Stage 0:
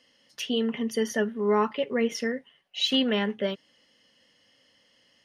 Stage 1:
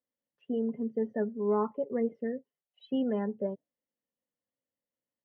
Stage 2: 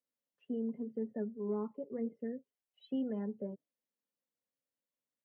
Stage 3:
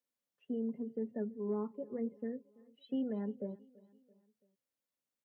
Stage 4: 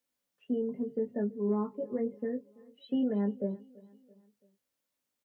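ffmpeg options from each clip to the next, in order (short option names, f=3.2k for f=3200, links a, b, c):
-af "lowpass=1k,afftdn=nr=22:nf=-38,volume=-4dB"
-filter_complex "[0:a]lowshelf=f=65:g=-9.5,acrossover=split=380[a][b];[b]acompressor=threshold=-46dB:ratio=2.5[c];[a][c]amix=inputs=2:normalize=0,flanger=delay=0.1:depth=4.8:regen=-67:speed=0.9:shape=sinusoidal"
-af "aecho=1:1:334|668|1002:0.0708|0.0354|0.0177"
-filter_complex "[0:a]asplit=2[a][b];[b]adelay=20,volume=-6dB[c];[a][c]amix=inputs=2:normalize=0,volume=5.5dB"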